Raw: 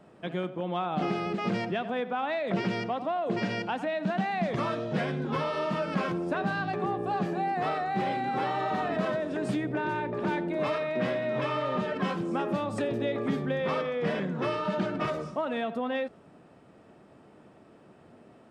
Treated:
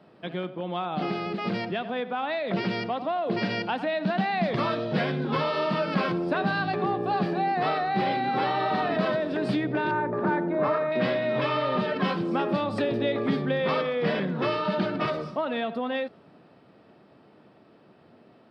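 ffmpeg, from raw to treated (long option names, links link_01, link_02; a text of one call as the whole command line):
ffmpeg -i in.wav -filter_complex "[0:a]asettb=1/sr,asplit=3[link_01][link_02][link_03];[link_01]atrim=end=9.914[link_04];[link_02]atrim=start=9.91:end=10.92,asetpts=PTS-STARTPTS,afade=type=in:duration=0.004:curve=qsin,afade=type=out:start_time=1.006:duration=0.004:curve=qsin,highshelf=frequency=2100:width_type=q:width=1.5:gain=-12[link_05];[link_03]atrim=start=10.916[link_06];[link_04][link_05]acrossfade=duration=0.004:curve1=hsin:curve2=qsin[link_07];[link_07][link_06]acrossfade=duration=0.004:curve1=qsin:curve2=hsin,highpass=90,highshelf=frequency=5600:width_type=q:width=3:gain=-7,dynaudnorm=framelen=300:gausssize=21:maxgain=3.5dB" out.wav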